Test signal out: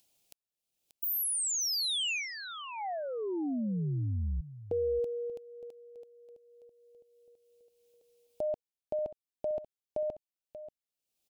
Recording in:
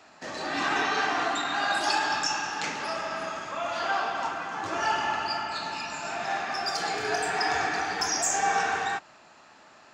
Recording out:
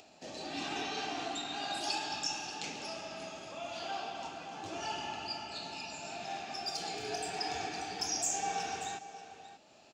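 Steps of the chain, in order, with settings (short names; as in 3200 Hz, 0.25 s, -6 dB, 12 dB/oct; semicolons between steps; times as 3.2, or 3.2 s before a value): echo 0.585 s -14.5 dB; dynamic EQ 550 Hz, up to -5 dB, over -39 dBFS, Q 1.6; upward compressor, threshold -45 dBFS; band shelf 1400 Hz -12 dB 1.3 oct; gain -6 dB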